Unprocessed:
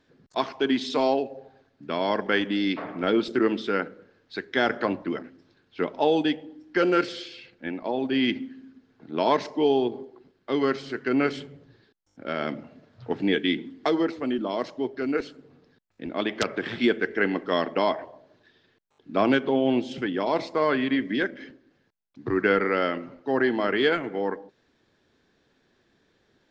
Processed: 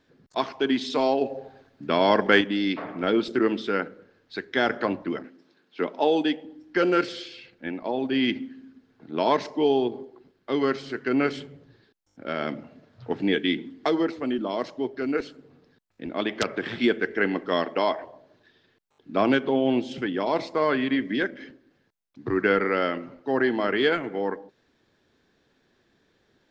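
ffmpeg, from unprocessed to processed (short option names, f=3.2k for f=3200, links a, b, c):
-filter_complex "[0:a]asettb=1/sr,asplit=3[a][b][c];[a]atrim=end=1.214[d];[b]atrim=start=1.21:end=2.41,asetpts=PTS-STARTPTS,afade=t=in:d=0.004:c=qsin,afade=t=out:st=1.196:d=0.004:c=qsin,acontrast=48[e];[c]atrim=start=2.406[f];[d][e]acrossfade=d=0.004:c1=hsin:c2=qsin[g];[g][f]acrossfade=d=0.004:c1=qsin:c2=hsin,asettb=1/sr,asplit=3[h][i][j];[h]atrim=end=5.244[k];[i]atrim=start=5.24:end=6.45,asetpts=PTS-STARTPTS,afade=t=in:d=0.004:c=qsin,afade=t=out:st=1.206:d=0.004:c=qsin,highpass=f=180:w=0.5412,highpass=f=180:w=1.3066[l];[j]atrim=start=6.446[m];[k][l]acrossfade=d=0.004:c1=hsin:c2=qsin[n];[n][m]acrossfade=d=0.004:c1=qsin:c2=hsin,asettb=1/sr,asplit=3[o][p][q];[o]atrim=end=17.634[r];[p]atrim=start=17.63:end=18.04,asetpts=PTS-STARTPTS,afade=t=in:d=0.004:c=qsin,afade=t=out:st=0.406:d=0.004:c=qsin,bass=f=250:g=-6,treble=f=4k:g=1[s];[q]atrim=start=18.036[t];[r][s]acrossfade=d=0.004:c1=hsin:c2=qsin[u];[u][t]acrossfade=d=0.004:c1=qsin:c2=hsin"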